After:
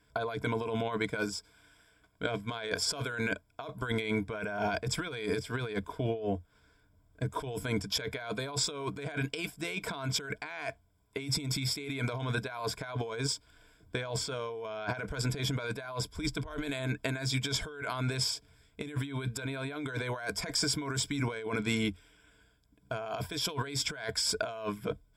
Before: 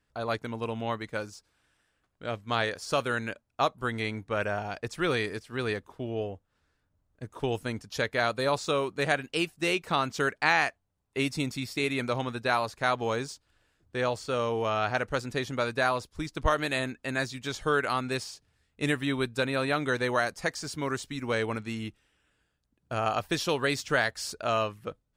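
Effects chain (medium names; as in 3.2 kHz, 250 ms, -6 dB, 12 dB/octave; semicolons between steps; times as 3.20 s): rippled EQ curve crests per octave 1.7, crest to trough 13 dB; compressor with a negative ratio -35 dBFS, ratio -1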